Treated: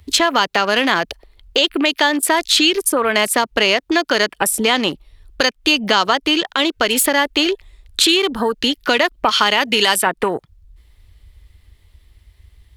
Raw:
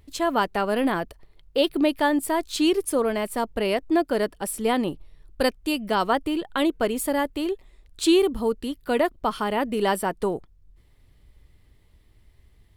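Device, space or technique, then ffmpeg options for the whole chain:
mastering chain: -filter_complex "[0:a]asettb=1/sr,asplit=3[a][b][c];[a]atrim=end=9.294[d];[b]atrim=start=9.29:end=10.07,asetpts=PTS-STARTPTS,afade=t=in:d=0.004:c=qsin,afade=t=out:st=0.776:d=0.004:c=qsin,tiltshelf=f=1.2k:g=-6[e];[c]atrim=start=10.066[f];[d][e]acrossfade=d=0.004:c1=hsin:c2=qsin[g];[g][f]acrossfade=d=0.004:c1=qsin:c2=hsin,highpass=f=43:p=1,equalizer=f=3.6k:t=o:w=0.96:g=2.5,acrossover=split=150|1200|3300[h][i][j][k];[h]acompressor=threshold=-55dB:ratio=4[l];[i]acompressor=threshold=-32dB:ratio=4[m];[j]acompressor=threshold=-35dB:ratio=4[n];[k]acompressor=threshold=-38dB:ratio=4[o];[l][m][n][o]amix=inputs=4:normalize=0,acompressor=threshold=-34dB:ratio=2,tiltshelf=f=770:g=-4.5,alimiter=level_in=20.5dB:limit=-1dB:release=50:level=0:latency=1,afwtdn=0.0501,volume=-1dB"

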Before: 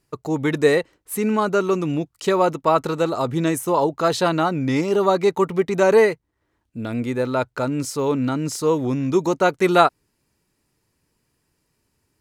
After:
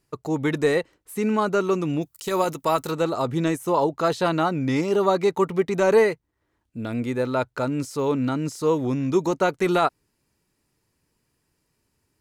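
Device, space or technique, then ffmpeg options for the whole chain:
de-esser from a sidechain: -filter_complex "[0:a]asplit=3[a][b][c];[a]afade=t=out:st=2.01:d=0.02[d];[b]aemphasis=mode=production:type=75fm,afade=t=in:st=2.01:d=0.02,afade=t=out:st=2.9:d=0.02[e];[c]afade=t=in:st=2.9:d=0.02[f];[d][e][f]amix=inputs=3:normalize=0,asplit=2[g][h];[h]highpass=5k,apad=whole_len=538205[i];[g][i]sidechaincompress=threshold=-36dB:ratio=8:attack=3.5:release=22,volume=-2dB"

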